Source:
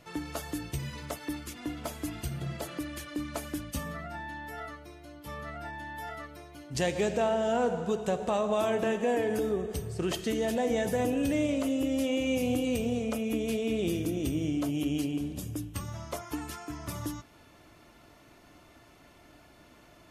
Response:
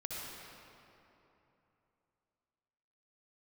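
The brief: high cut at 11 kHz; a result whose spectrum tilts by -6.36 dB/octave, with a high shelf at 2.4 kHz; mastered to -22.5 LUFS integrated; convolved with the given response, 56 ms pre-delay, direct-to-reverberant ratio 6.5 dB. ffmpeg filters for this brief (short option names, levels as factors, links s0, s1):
-filter_complex "[0:a]lowpass=11000,highshelf=f=2400:g=-7.5,asplit=2[s0][s1];[1:a]atrim=start_sample=2205,adelay=56[s2];[s1][s2]afir=irnorm=-1:irlink=0,volume=0.398[s3];[s0][s3]amix=inputs=2:normalize=0,volume=2.82"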